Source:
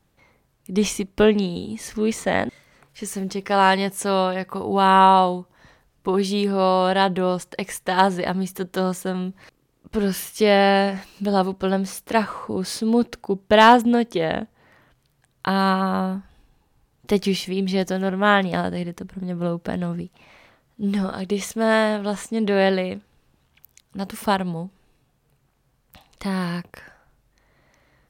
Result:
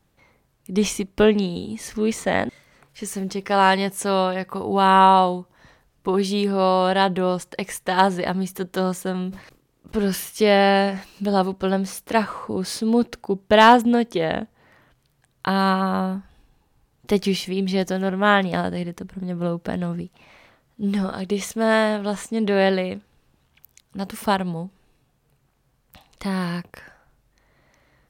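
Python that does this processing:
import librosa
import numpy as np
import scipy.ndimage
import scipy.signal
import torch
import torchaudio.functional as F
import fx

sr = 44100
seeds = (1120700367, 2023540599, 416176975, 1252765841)

y = fx.sustainer(x, sr, db_per_s=140.0, at=(9.19, 10.3))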